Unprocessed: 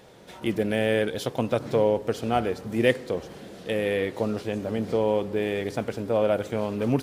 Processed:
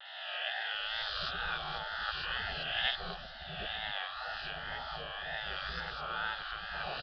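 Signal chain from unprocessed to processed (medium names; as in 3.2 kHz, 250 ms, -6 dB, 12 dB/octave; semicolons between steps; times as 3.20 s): reverse spectral sustain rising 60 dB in 1.75 s; bass shelf 180 Hz +8.5 dB; spectral gate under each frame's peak -20 dB weak; static phaser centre 1.5 kHz, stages 8; three bands offset in time mids, highs, lows 50/750 ms, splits 580/3400 Hz; wow and flutter 80 cents; resampled via 11.025 kHz; trim +3 dB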